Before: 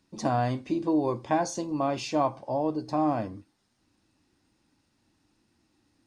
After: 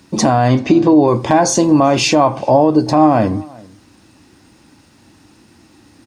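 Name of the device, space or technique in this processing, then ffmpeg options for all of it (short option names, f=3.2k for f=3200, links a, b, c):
mastering chain: -filter_complex "[0:a]asettb=1/sr,asplit=3[a][b][c];[a]atrim=end=0.484[d];[b]atrim=start=0.48:end=1.08,asetpts=PTS-STARTPTS,afade=t=in:d=0.004:c=qsin,afade=t=out:st=0.596:d=0.004:c=qsin,lowpass=f=6.8k:w=0.5412,lowpass=f=6.8k:w=1.3066[e];[c]atrim=start=1.076[f];[d][e]acrossfade=d=0.004:c1=hsin:c2=qsin[g];[g][f]acrossfade=d=0.004:c1=qsin:c2=hsin,highpass=52,equalizer=f=4.3k:t=o:w=0.77:g=-2,acompressor=threshold=-29dB:ratio=2.5,asoftclip=type=hard:threshold=-18.5dB,alimiter=level_in=23.5dB:limit=-1dB:release=50:level=0:latency=1,asplit=2[h][i];[i]adelay=384.8,volume=-24dB,highshelf=f=4k:g=-8.66[j];[h][j]amix=inputs=2:normalize=0,volume=-1dB"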